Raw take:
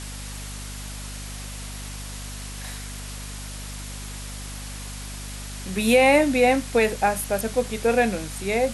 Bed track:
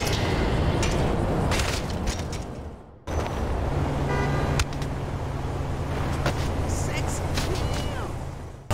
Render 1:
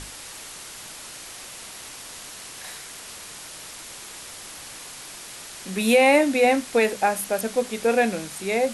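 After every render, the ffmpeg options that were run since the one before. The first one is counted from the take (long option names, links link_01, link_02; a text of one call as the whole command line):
ffmpeg -i in.wav -af "bandreject=frequency=50:width_type=h:width=6,bandreject=frequency=100:width_type=h:width=6,bandreject=frequency=150:width_type=h:width=6,bandreject=frequency=200:width_type=h:width=6,bandreject=frequency=250:width_type=h:width=6" out.wav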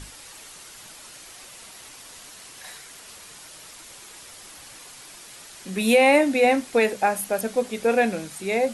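ffmpeg -i in.wav -af "afftdn=noise_reduction=6:noise_floor=-40" out.wav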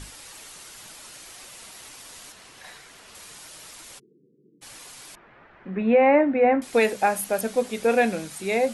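ffmpeg -i in.wav -filter_complex "[0:a]asettb=1/sr,asplit=3[link_01][link_02][link_03];[link_01]atrim=end=2.324[link_04];[link_02]atrim=start=2.32:end=3.15,asetpts=PTS-STARTPTS,afade=type=in:duration=0.004:curve=qsin,afade=type=out:start_time=0.826:duration=0.004:curve=qsin,highshelf=frequency=5200:gain=-10.5[link_05];[link_03]atrim=start=3.146[link_06];[link_04][link_05]acrossfade=duration=0.004:curve1=hsin:curve2=qsin[link_07];[link_07][link_06]acrossfade=duration=0.004:curve1=qsin:curve2=hsin,asplit=3[link_08][link_09][link_10];[link_08]afade=type=out:start_time=3.98:duration=0.02[link_11];[link_09]asuperpass=centerf=240:order=20:qfactor=0.73,afade=type=in:start_time=3.98:duration=0.02,afade=type=out:start_time=4.61:duration=0.02[link_12];[link_10]afade=type=in:start_time=4.61:duration=0.02[link_13];[link_11][link_12][link_13]amix=inputs=3:normalize=0,asettb=1/sr,asplit=3[link_14][link_15][link_16];[link_14]atrim=end=5.154[link_17];[link_15]atrim=start=5.15:end=6.62,asetpts=PTS-STARTPTS,afade=type=in:duration=0.004:curve=qsin,afade=type=out:start_time=1.466:duration=0.004:curve=qsin,lowpass=frequency=1900:width=0.5412,lowpass=frequency=1900:width=1.3066[link_18];[link_16]atrim=start=6.616[link_19];[link_17][link_18]acrossfade=duration=0.004:curve1=hsin:curve2=qsin[link_20];[link_20][link_19]acrossfade=duration=0.004:curve1=qsin:curve2=hsin" out.wav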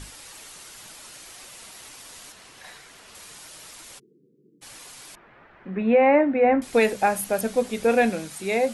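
ffmpeg -i in.wav -filter_complex "[0:a]asettb=1/sr,asplit=3[link_01][link_02][link_03];[link_01]atrim=end=6.494[link_04];[link_02]atrim=start=6.49:end=8.1,asetpts=PTS-STARTPTS,afade=type=in:duration=0.004:curve=qsin,afade=type=out:start_time=1.606:duration=0.004:curve=qsin,lowshelf=frequency=120:gain=10[link_05];[link_03]atrim=start=8.096[link_06];[link_04][link_05]acrossfade=duration=0.004:curve1=hsin:curve2=qsin[link_07];[link_07][link_06]acrossfade=duration=0.004:curve1=qsin:curve2=hsin" out.wav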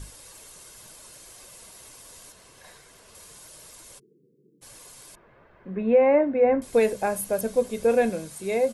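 ffmpeg -i in.wav -af "equalizer=frequency=2400:width_type=o:width=2.9:gain=-8.5,aecho=1:1:1.9:0.33" out.wav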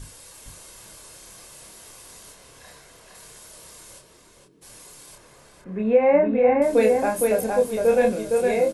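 ffmpeg -i in.wav -filter_complex "[0:a]asplit=2[link_01][link_02];[link_02]adelay=28,volume=-4dB[link_03];[link_01][link_03]amix=inputs=2:normalize=0,asplit=2[link_04][link_05];[link_05]adelay=462,lowpass=frequency=3500:poles=1,volume=-3dB,asplit=2[link_06][link_07];[link_07]adelay=462,lowpass=frequency=3500:poles=1,volume=0.2,asplit=2[link_08][link_09];[link_09]adelay=462,lowpass=frequency=3500:poles=1,volume=0.2[link_10];[link_04][link_06][link_08][link_10]amix=inputs=4:normalize=0" out.wav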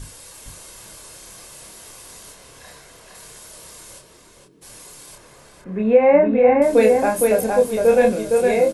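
ffmpeg -i in.wav -af "volume=4dB" out.wav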